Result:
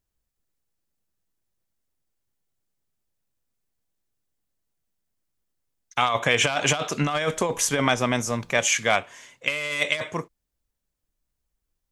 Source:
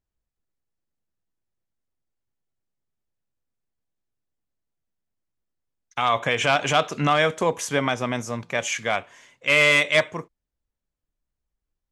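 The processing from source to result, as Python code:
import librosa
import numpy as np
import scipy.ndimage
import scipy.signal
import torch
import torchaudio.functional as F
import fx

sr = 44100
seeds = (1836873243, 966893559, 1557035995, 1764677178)

y = fx.dmg_noise_colour(x, sr, seeds[0], colour='brown', level_db=-57.0, at=(7.07, 8.58), fade=0.02)
y = fx.over_compress(y, sr, threshold_db=-22.0, ratio=-0.5)
y = fx.high_shelf(y, sr, hz=4900.0, db=7.0)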